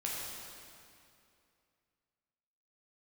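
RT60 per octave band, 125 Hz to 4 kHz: 2.6, 2.7, 2.6, 2.5, 2.4, 2.1 s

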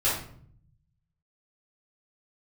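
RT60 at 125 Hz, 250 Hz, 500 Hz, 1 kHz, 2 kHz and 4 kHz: 1.4, 1.0, 0.65, 0.50, 0.45, 0.40 s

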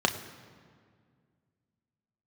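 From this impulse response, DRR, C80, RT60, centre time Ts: 4.5 dB, 12.5 dB, 2.0 s, 17 ms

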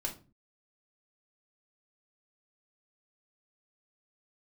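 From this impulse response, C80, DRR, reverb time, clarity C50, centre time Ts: 18.5 dB, -2.0 dB, 0.35 s, 12.0 dB, 14 ms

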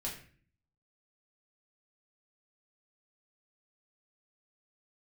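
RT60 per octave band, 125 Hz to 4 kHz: 0.80, 0.70, 0.50, 0.40, 0.50, 0.40 s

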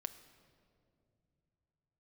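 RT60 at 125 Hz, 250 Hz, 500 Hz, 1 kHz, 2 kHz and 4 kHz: n/a, 3.5 s, 3.0 s, 2.4 s, 1.7 s, 1.4 s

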